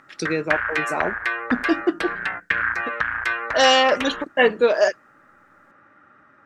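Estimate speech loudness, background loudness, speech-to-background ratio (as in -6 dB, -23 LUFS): -21.0 LUFS, -25.0 LUFS, 4.0 dB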